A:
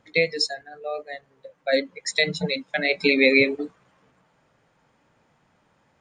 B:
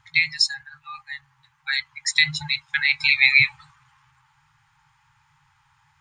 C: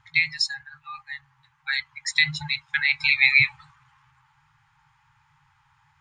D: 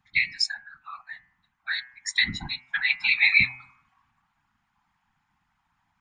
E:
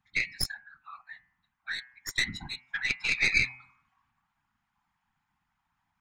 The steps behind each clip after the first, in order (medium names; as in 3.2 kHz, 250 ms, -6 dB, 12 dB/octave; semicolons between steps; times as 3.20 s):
FFT band-reject 160–790 Hz; trim +4.5 dB
treble shelf 4.5 kHz -8 dB
whisper effect; spectral noise reduction 8 dB; de-hum 126.4 Hz, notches 23; trim -1.5 dB
tracing distortion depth 0.057 ms; trim -6 dB